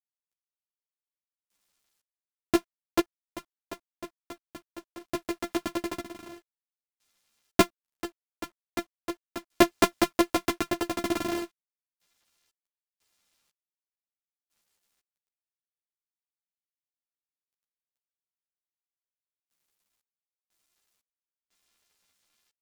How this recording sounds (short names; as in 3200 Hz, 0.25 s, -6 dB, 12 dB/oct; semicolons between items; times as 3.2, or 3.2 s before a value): a buzz of ramps at a fixed pitch in blocks of 128 samples; random-step tremolo 2 Hz, depth 100%; a quantiser's noise floor 12-bit, dither none; a shimmering, thickened sound